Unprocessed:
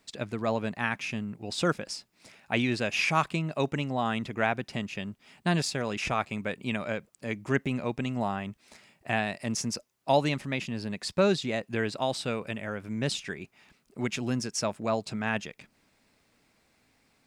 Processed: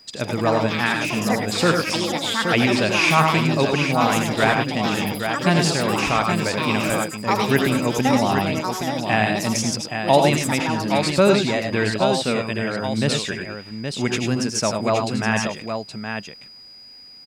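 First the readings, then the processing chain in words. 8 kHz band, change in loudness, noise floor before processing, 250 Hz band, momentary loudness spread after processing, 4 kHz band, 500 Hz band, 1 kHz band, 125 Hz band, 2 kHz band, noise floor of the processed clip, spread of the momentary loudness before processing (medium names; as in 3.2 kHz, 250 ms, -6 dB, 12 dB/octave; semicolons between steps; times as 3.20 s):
+11.0 dB, +10.0 dB, -69 dBFS, +10.5 dB, 9 LU, +11.5 dB, +10.0 dB, +11.5 dB, +10.0 dB, +10.5 dB, -44 dBFS, 10 LU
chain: ever faster or slower copies 144 ms, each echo +6 st, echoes 2, each echo -6 dB; whistle 4.9 kHz -55 dBFS; multi-tap echo 82/101/821 ms -8/-6.5/-6.5 dB; trim +7.5 dB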